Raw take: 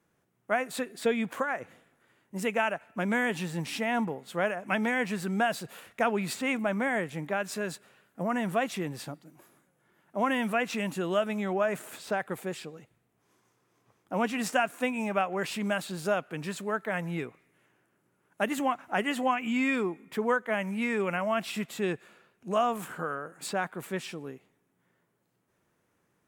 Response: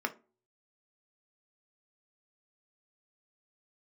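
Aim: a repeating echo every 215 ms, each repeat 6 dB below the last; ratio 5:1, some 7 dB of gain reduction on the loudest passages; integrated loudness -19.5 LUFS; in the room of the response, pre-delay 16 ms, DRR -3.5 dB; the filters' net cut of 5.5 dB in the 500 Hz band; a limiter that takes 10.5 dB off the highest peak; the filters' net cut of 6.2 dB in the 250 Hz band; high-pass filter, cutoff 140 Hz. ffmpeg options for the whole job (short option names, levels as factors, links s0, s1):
-filter_complex "[0:a]highpass=140,equalizer=f=250:t=o:g=-5.5,equalizer=f=500:t=o:g=-6,acompressor=threshold=0.0251:ratio=5,alimiter=level_in=2:limit=0.0631:level=0:latency=1,volume=0.501,aecho=1:1:215|430|645|860|1075|1290:0.501|0.251|0.125|0.0626|0.0313|0.0157,asplit=2[s0][s1];[1:a]atrim=start_sample=2205,adelay=16[s2];[s1][s2]afir=irnorm=-1:irlink=0,volume=0.75[s3];[s0][s3]amix=inputs=2:normalize=0,volume=6.31"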